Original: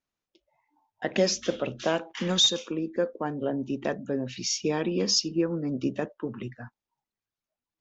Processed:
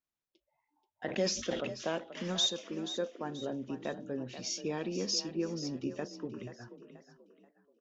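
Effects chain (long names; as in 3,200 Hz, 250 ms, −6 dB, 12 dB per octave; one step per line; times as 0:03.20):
on a send: echo with shifted repeats 482 ms, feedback 37%, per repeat +35 Hz, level −11.5 dB
0:01.05–0:01.67: on the sum: level that may fall only so fast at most 67 dB per second
level −8.5 dB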